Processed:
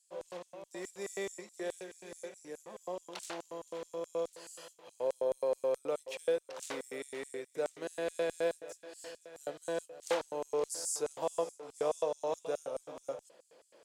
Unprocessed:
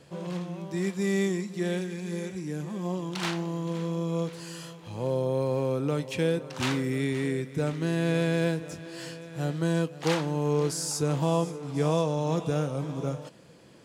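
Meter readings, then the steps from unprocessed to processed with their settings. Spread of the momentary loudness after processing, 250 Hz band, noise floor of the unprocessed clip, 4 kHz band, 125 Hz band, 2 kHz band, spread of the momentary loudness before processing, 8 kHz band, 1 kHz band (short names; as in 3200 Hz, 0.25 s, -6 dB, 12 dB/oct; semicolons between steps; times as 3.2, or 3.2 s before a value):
14 LU, -19.5 dB, -48 dBFS, -10.5 dB, -31.0 dB, -10.0 dB, 9 LU, -4.5 dB, -7.5 dB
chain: LFO high-pass square 4.7 Hz 540–7900 Hz; added harmonics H 7 -41 dB, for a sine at -12 dBFS; gain -7.5 dB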